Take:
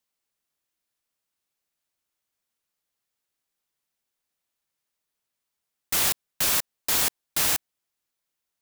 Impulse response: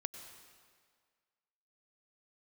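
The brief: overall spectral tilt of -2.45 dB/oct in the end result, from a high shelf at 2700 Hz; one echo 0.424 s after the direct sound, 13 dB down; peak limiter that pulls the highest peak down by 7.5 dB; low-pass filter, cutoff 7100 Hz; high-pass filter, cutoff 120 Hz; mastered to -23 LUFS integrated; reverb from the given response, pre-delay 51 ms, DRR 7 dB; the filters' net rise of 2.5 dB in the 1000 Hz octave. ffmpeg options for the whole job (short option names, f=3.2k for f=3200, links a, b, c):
-filter_complex "[0:a]highpass=120,lowpass=7.1k,equalizer=f=1k:t=o:g=4,highshelf=f=2.7k:g=-5.5,alimiter=limit=-24dB:level=0:latency=1,aecho=1:1:424:0.224,asplit=2[a][b];[1:a]atrim=start_sample=2205,adelay=51[c];[b][c]afir=irnorm=-1:irlink=0,volume=-5.5dB[d];[a][d]amix=inputs=2:normalize=0,volume=12dB"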